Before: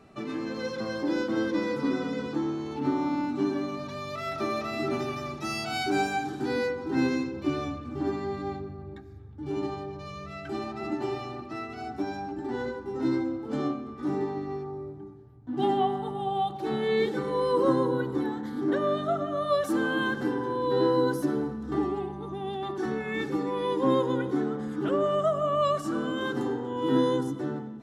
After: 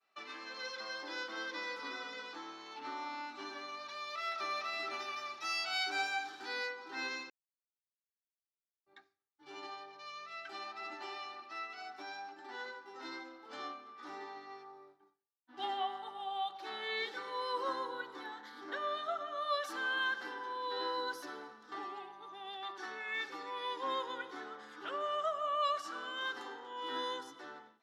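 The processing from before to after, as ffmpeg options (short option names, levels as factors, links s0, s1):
-filter_complex "[0:a]asplit=3[s0][s1][s2];[s0]atrim=end=7.3,asetpts=PTS-STARTPTS,afade=t=out:st=7.296:d=0.004:c=hsin[s3];[s1]atrim=start=7.3:end=8.86,asetpts=PTS-STARTPTS,volume=0[s4];[s2]atrim=start=8.86,asetpts=PTS-STARTPTS,afade=t=in:d=0.004:c=hsin[s5];[s3][s4][s5]concat=n=3:v=0:a=1,highpass=1100,highshelf=f=6600:t=q:w=1.5:g=-7.5,agate=range=0.0224:threshold=0.002:ratio=3:detection=peak,volume=0.75"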